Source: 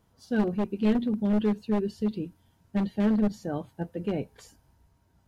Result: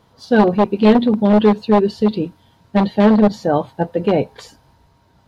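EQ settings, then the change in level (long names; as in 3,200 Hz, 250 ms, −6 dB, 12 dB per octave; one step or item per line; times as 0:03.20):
octave-band graphic EQ 125/250/500/1,000/2,000/4,000 Hz +6/+4/+8/+9/+5/+12 dB
dynamic equaliser 780 Hz, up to +5 dB, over −37 dBFS, Q 1.2
+4.5 dB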